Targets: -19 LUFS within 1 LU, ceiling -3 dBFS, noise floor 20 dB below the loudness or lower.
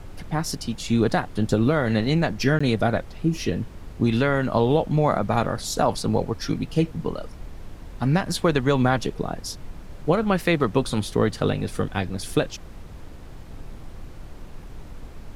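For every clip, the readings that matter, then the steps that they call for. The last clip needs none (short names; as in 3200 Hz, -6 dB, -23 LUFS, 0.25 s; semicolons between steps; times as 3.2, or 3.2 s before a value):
dropouts 1; longest dropout 15 ms; noise floor -41 dBFS; noise floor target -44 dBFS; loudness -23.5 LUFS; peak -6.0 dBFS; loudness target -19.0 LUFS
-> interpolate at 2.59, 15 ms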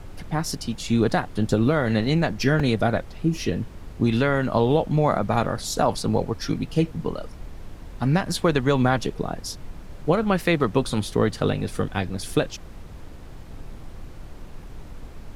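dropouts 0; noise floor -41 dBFS; noise floor target -44 dBFS
-> noise print and reduce 6 dB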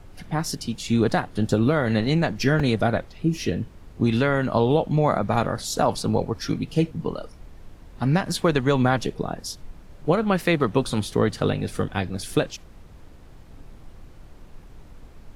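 noise floor -46 dBFS; loudness -23.5 LUFS; peak -6.0 dBFS; loudness target -19.0 LUFS
-> gain +4.5 dB; limiter -3 dBFS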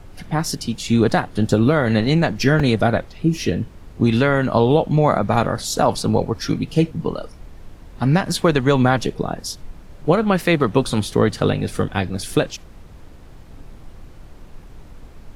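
loudness -19.0 LUFS; peak -3.0 dBFS; noise floor -42 dBFS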